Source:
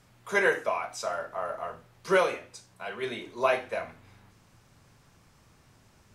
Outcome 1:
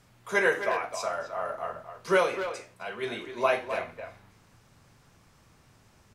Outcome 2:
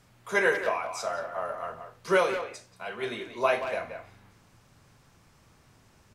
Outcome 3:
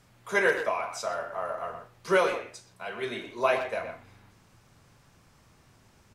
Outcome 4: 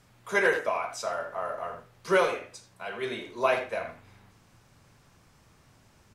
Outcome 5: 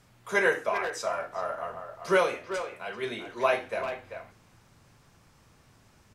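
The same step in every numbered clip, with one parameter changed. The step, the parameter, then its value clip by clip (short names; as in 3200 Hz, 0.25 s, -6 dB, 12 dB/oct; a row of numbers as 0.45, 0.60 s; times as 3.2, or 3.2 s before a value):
speakerphone echo, time: 260, 180, 120, 80, 390 ms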